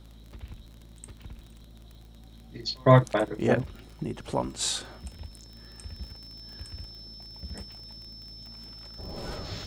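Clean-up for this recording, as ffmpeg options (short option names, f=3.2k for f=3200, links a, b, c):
-af "adeclick=t=4,bandreject=f=54.9:t=h:w=4,bandreject=f=109.8:t=h:w=4,bandreject=f=164.7:t=h:w=4,bandreject=f=219.6:t=h:w=4,bandreject=f=274.5:t=h:w=4,bandreject=f=329.4:t=h:w=4,bandreject=f=5.3k:w=30"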